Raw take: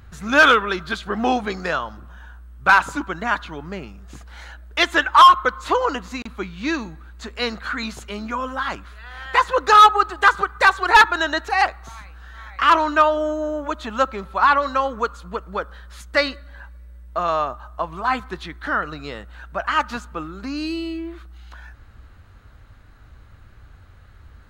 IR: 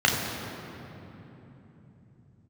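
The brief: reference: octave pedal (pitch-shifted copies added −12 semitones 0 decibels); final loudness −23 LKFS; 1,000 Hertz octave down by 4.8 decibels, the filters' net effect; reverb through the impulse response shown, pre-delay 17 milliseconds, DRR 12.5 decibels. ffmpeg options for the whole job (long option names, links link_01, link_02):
-filter_complex "[0:a]equalizer=frequency=1000:width_type=o:gain=-6,asplit=2[link_01][link_02];[1:a]atrim=start_sample=2205,adelay=17[link_03];[link_02][link_03]afir=irnorm=-1:irlink=0,volume=-30dB[link_04];[link_01][link_04]amix=inputs=2:normalize=0,asplit=2[link_05][link_06];[link_06]asetrate=22050,aresample=44100,atempo=2,volume=0dB[link_07];[link_05][link_07]amix=inputs=2:normalize=0,volume=-3dB"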